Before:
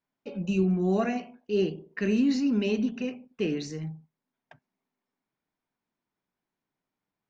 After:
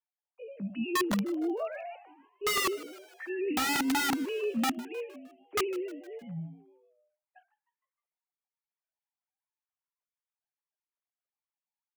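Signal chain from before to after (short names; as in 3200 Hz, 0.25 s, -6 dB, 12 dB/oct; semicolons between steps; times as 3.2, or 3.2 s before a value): sine-wave speech; tempo 0.61×; wrapped overs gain 22 dB; on a send: frequency-shifting echo 0.154 s, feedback 53%, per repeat +110 Hz, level -19.5 dB; on the sum: gain -1.5 dB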